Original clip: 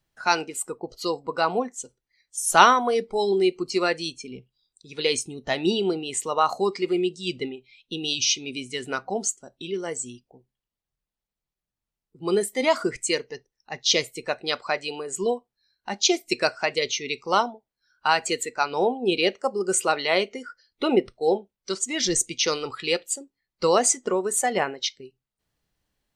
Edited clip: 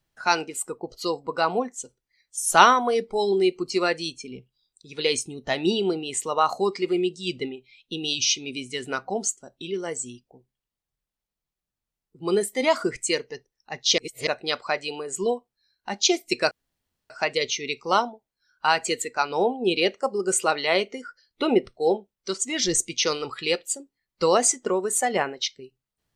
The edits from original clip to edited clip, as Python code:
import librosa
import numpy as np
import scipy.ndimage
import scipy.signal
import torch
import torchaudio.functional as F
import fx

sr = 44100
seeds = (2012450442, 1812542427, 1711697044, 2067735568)

y = fx.edit(x, sr, fx.reverse_span(start_s=13.98, length_s=0.29),
    fx.insert_room_tone(at_s=16.51, length_s=0.59), tone=tone)